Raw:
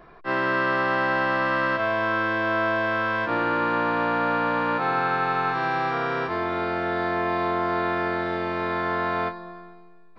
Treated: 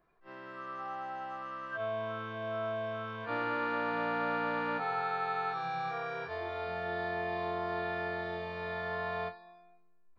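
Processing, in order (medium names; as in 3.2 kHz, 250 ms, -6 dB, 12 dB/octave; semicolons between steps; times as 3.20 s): reverse echo 36 ms -13.5 dB; spectral noise reduction 15 dB; trim -8.5 dB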